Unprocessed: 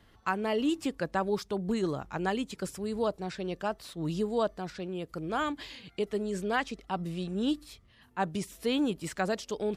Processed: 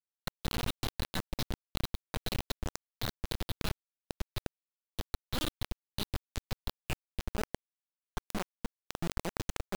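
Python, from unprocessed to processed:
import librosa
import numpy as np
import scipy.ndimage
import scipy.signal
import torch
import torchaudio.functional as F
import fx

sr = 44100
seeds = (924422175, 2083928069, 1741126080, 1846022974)

y = fx.wiener(x, sr, points=15)
y = fx.filter_sweep_highpass(y, sr, from_hz=4000.0, to_hz=74.0, start_s=6.73, end_s=8.27, q=6.6)
y = fx.schmitt(y, sr, flips_db=-39.5)
y = fx.quant_dither(y, sr, seeds[0], bits=6, dither='none')
y = fx.env_flatten(y, sr, amount_pct=50)
y = y * 10.0 ** (3.0 / 20.0)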